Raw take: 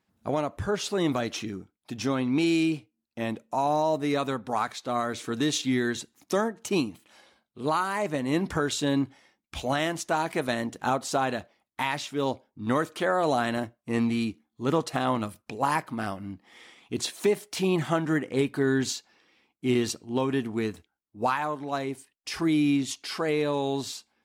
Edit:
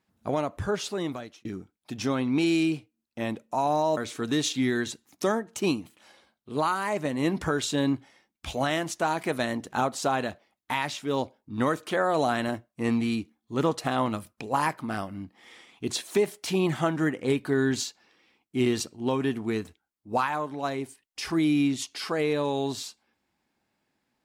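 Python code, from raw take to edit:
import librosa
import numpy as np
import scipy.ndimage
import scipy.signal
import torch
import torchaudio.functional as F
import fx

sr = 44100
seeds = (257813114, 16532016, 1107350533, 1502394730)

y = fx.edit(x, sr, fx.fade_out_span(start_s=0.7, length_s=0.75),
    fx.cut(start_s=3.97, length_s=1.09), tone=tone)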